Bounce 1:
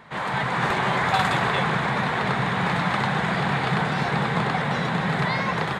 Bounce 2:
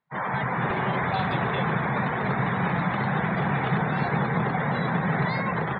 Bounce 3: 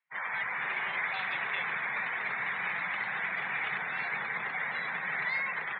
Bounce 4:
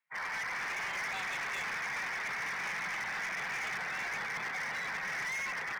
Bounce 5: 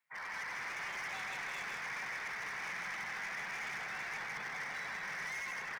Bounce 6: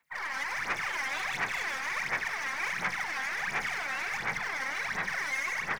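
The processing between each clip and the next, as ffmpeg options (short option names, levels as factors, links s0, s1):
-filter_complex "[0:a]afftdn=nr=35:nf=-31,acrossover=split=580[s0][s1];[s1]alimiter=limit=0.0891:level=0:latency=1:release=69[s2];[s0][s2]amix=inputs=2:normalize=0"
-af "bandpass=f=2300:t=q:w=2.7:csg=0,volume=1.5"
-af "asoftclip=type=hard:threshold=0.02"
-af "alimiter=level_in=7.5:limit=0.0631:level=0:latency=1,volume=0.133,aecho=1:1:159:0.631,volume=1.19"
-af "aeval=exprs='0.0168*(cos(1*acos(clip(val(0)/0.0168,-1,1)))-cos(1*PI/2))+0.000473*(cos(4*acos(clip(val(0)/0.0168,-1,1)))-cos(4*PI/2))':c=same,aphaser=in_gain=1:out_gain=1:delay=3.8:decay=0.69:speed=1.4:type=sinusoidal,volume=1.78"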